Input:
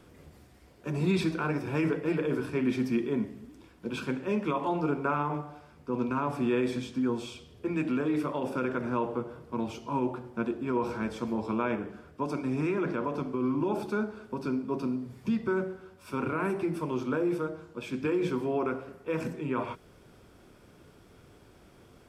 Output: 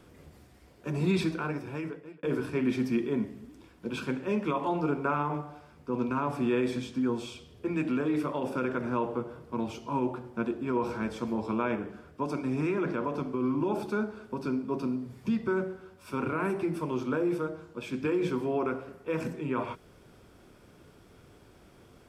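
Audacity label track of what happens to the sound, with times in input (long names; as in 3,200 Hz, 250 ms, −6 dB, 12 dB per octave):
1.190000	2.230000	fade out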